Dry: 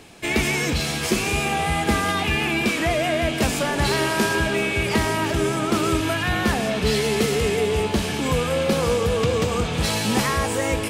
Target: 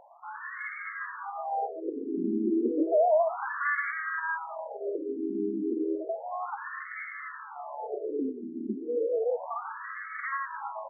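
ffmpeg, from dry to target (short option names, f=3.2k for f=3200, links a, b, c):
-filter_complex "[0:a]alimiter=limit=-18dB:level=0:latency=1:release=61,equalizer=f=63:t=o:w=0.95:g=14.5,asplit=2[a][b];[b]aecho=0:1:442:0.178[c];[a][c]amix=inputs=2:normalize=0,asettb=1/sr,asplit=3[d][e][f];[d]atrim=end=2.074[g];[e]atrim=start=2.07:end=3.91,asetpts=PTS-STARTPTS,afade=t=in:d=0.004:c=qsin,afade=t=out:st=1.836:d=0.004:c=qsin,acontrast=57[h];[f]atrim=start=3.906[i];[g][h]acrossfade=d=0.004:c1=hsin:c2=qsin[j];[j][i]acrossfade=d=0.004:c1=qsin:c2=hsin,afftfilt=real='re*between(b*sr/1024,290*pow(1600/290,0.5+0.5*sin(2*PI*0.32*pts/sr))/1.41,290*pow(1600/290,0.5+0.5*sin(2*PI*0.32*pts/sr))*1.41)':imag='im*between(b*sr/1024,290*pow(1600/290,0.5+0.5*sin(2*PI*0.32*pts/sr))/1.41,290*pow(1600/290,0.5+0.5*sin(2*PI*0.32*pts/sr))*1.41)':win_size=1024:overlap=0.75"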